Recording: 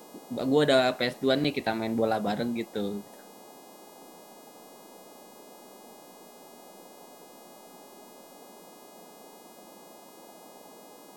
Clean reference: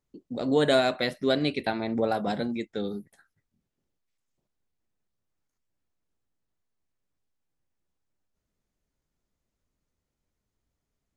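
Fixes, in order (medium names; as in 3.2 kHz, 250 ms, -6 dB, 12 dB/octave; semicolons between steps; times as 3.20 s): de-hum 415.3 Hz, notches 40; interpolate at 1.44 s, 5.6 ms; noise print and reduce 30 dB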